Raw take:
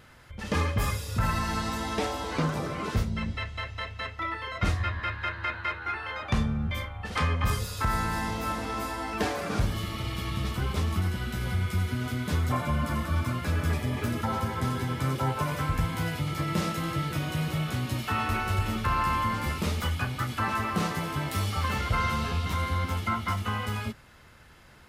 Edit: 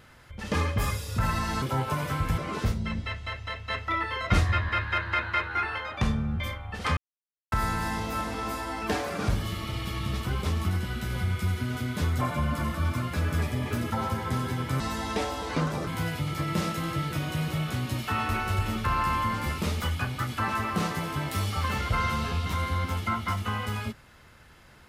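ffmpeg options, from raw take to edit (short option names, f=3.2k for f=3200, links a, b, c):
-filter_complex "[0:a]asplit=9[a][b][c][d][e][f][g][h][i];[a]atrim=end=1.622[j];[b]atrim=start=15.108:end=15.872[k];[c]atrim=start=2.688:end=4.012[l];[d]atrim=start=4.008:end=6.092,asetpts=PTS-STARTPTS,volume=4dB[m];[e]atrim=start=6.088:end=7.28,asetpts=PTS-STARTPTS,afade=t=out:st=1.188:d=0.004:c=hsin[n];[f]atrim=start=7.28:end=7.83,asetpts=PTS-STARTPTS,volume=0[o];[g]atrim=start=7.83:end=15.112,asetpts=PTS-STARTPTS,afade=t=in:d=0.004:c=hsin[p];[h]atrim=start=1.618:end=2.692[q];[i]atrim=start=15.868[r];[j][k]acrossfade=d=0.004:c1=hsin:c2=hsin[s];[s][l]acrossfade=d=0.004:c1=hsin:c2=hsin[t];[t][m]acrossfade=d=0.004:c1=hsin:c2=hsin[u];[n][o][p]concat=n=3:v=0:a=1[v];[u][v]acrossfade=d=0.004:c1=hsin:c2=hsin[w];[w][q]acrossfade=d=0.004:c1=hsin:c2=hsin[x];[x][r]acrossfade=d=0.004:c1=hsin:c2=hsin"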